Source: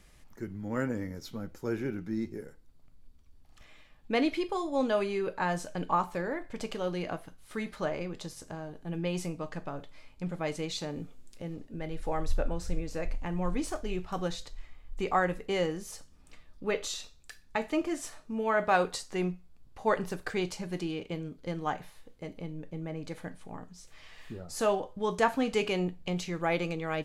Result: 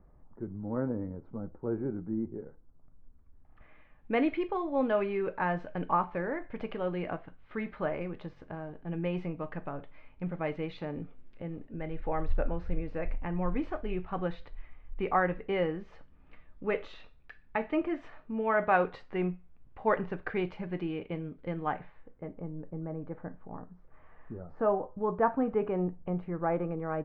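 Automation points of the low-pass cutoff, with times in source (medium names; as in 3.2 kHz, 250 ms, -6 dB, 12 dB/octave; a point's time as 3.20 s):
low-pass 24 dB/octave
2.28 s 1.1 kHz
4.20 s 2.5 kHz
21.72 s 2.5 kHz
22.47 s 1.4 kHz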